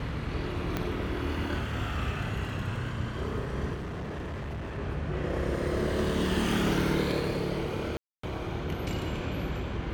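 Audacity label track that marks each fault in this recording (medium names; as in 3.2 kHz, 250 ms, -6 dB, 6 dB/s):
0.770000	0.770000	pop -15 dBFS
3.730000	4.790000	clipped -33 dBFS
7.970000	8.230000	dropout 264 ms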